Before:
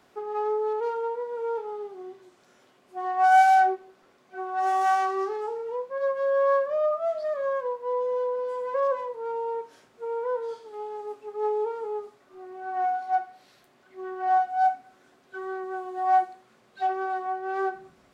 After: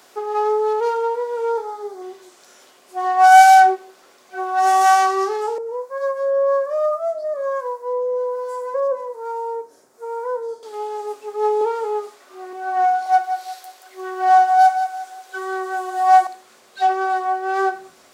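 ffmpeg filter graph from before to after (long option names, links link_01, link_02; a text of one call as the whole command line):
ffmpeg -i in.wav -filter_complex "[0:a]asettb=1/sr,asplit=3[link_01][link_02][link_03];[link_01]atrim=end=1.524[link_04];[link_02]atrim=start=1.52:end=2.02,asetpts=PTS-STARTPTS,afade=type=in:duration=0.004:curve=qsin,afade=type=out:start_time=0.496:duration=0.004:curve=qsin,equalizer=frequency=2800:width_type=o:width=0.5:gain=-11.5,bandreject=frequency=60:width_type=h:width=6,bandreject=frequency=120:width_type=h:width=6,bandreject=frequency=180:width_type=h:width=6,bandreject=frequency=240:width_type=h:width=6,bandreject=frequency=300:width_type=h:width=6,bandreject=frequency=360:width_type=h:width=6,bandreject=frequency=420:width_type=h:width=6[link_05];[link_03]atrim=start=2.016[link_06];[link_04][link_05]acrossfade=duration=0.004:curve1=hsin:curve2=qsin[link_07];[link_07][link_06]acrossfade=duration=0.004:curve1=qsin:curve2=hsin,asettb=1/sr,asplit=3[link_08][link_09][link_10];[link_08]atrim=end=5.584[link_11];[link_09]atrim=start=5.58:end=10.63,asetpts=PTS-STARTPTS,afade=type=in:duration=0.004:curve=qsin,afade=type=out:start_time=5.046:duration=0.004:curve=qsin,equalizer=frequency=3000:width_type=o:width=1.3:gain=-12.5,acrossover=split=600[link_12][link_13];[link_12]aeval=exprs='val(0)*(1-0.7/2+0.7/2*cos(2*PI*1.2*n/s))':channel_layout=same[link_14];[link_13]aeval=exprs='val(0)*(1-0.7/2-0.7/2*cos(2*PI*1.2*n/s))':channel_layout=same[link_15];[link_14][link_15]amix=inputs=2:normalize=0[link_16];[link_10]atrim=start=10.626[link_17];[link_11][link_16]acrossfade=duration=0.004:curve1=hsin:curve2=qsin[link_18];[link_18][link_17]acrossfade=duration=0.004:curve1=qsin:curve2=hsin,asettb=1/sr,asplit=3[link_19][link_20][link_21];[link_19]atrim=end=11.614[link_22];[link_20]atrim=start=11.61:end=12.53,asetpts=PTS-STARTPTS,afade=type=in:duration=0.004:curve=qsin,afade=type=out:start_time=0.916:duration=0.004:curve=qsin,highpass=180,equalizer=frequency=1700:width_type=o:width=2.7:gain=3[link_23];[link_21]atrim=start=12.526[link_24];[link_22][link_23]acrossfade=duration=0.004:curve1=hsin:curve2=qsin[link_25];[link_25][link_24]acrossfade=duration=0.004:curve1=qsin:curve2=hsin,asettb=1/sr,asplit=3[link_26][link_27][link_28];[link_26]atrim=end=13.064[link_29];[link_27]atrim=start=13.06:end=16.27,asetpts=PTS-STARTPTS,afade=type=in:duration=0.004:curve=qsin,afade=type=out:start_time=3.206:duration=0.004:curve=qsin,highpass=frequency=340:width=0.5412,highpass=frequency=340:width=1.3066,highshelf=frequency=4200:gain=4.5,aecho=1:1:177|354|531|708:0.355|0.131|0.0486|0.018,atrim=end_sample=141561[link_30];[link_28]atrim=start=16.266[link_31];[link_29][link_30]acrossfade=duration=0.004:curve1=hsin:curve2=qsin[link_32];[link_32][link_31]acrossfade=duration=0.004:curve1=qsin:curve2=hsin,bass=frequency=250:gain=-15,treble=frequency=4000:gain=10,acontrast=26,volume=4.5dB" out.wav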